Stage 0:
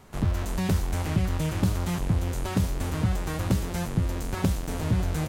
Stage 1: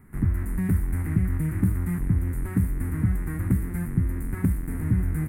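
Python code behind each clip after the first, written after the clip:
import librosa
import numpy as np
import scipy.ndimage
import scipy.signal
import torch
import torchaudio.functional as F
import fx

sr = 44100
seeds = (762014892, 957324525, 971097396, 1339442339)

y = fx.curve_eq(x, sr, hz=(300.0, 590.0, 2000.0, 3100.0, 6000.0, 9500.0), db=(0, -19, -2, -28, -29, -3))
y = y * 10.0 ** (2.0 / 20.0)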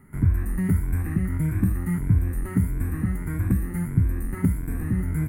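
y = fx.spec_ripple(x, sr, per_octave=1.7, drift_hz=1.6, depth_db=10)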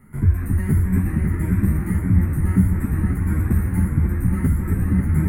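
y = fx.echo_bbd(x, sr, ms=271, stages=4096, feedback_pct=77, wet_db=-4)
y = fx.ensemble(y, sr)
y = y * 10.0 ** (5.5 / 20.0)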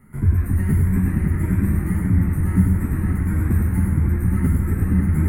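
y = x + 10.0 ** (-5.0 / 20.0) * np.pad(x, (int(100 * sr / 1000.0), 0))[:len(x)]
y = y * 10.0 ** (-1.0 / 20.0)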